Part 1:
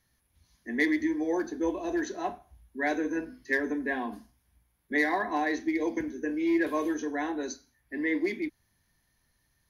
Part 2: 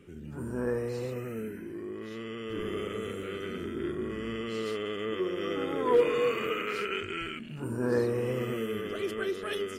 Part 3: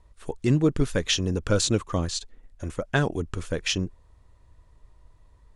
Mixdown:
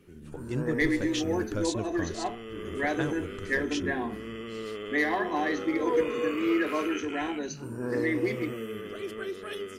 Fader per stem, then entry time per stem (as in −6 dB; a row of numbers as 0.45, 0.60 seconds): −0.5, −3.5, −10.5 decibels; 0.00, 0.00, 0.05 seconds